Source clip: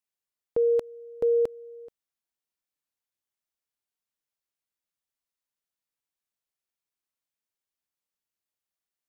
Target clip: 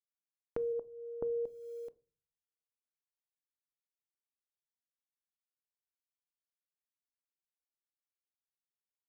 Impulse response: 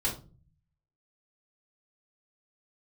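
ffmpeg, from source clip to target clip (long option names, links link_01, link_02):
-filter_complex "[0:a]acrusher=bits=10:mix=0:aa=0.000001,acompressor=threshold=-37dB:ratio=4,asplit=3[link_01][link_02][link_03];[link_01]afade=type=out:start_time=0.72:duration=0.02[link_04];[link_02]lowpass=frequency=1100:width=0.5412,lowpass=frequency=1100:width=1.3066,afade=type=in:start_time=0.72:duration=0.02,afade=type=out:start_time=1.45:duration=0.02[link_05];[link_03]afade=type=in:start_time=1.45:duration=0.02[link_06];[link_04][link_05][link_06]amix=inputs=3:normalize=0,asplit=2[link_07][link_08];[1:a]atrim=start_sample=2205[link_09];[link_08][link_09]afir=irnorm=-1:irlink=0,volume=-21.5dB[link_10];[link_07][link_10]amix=inputs=2:normalize=0,volume=-1.5dB"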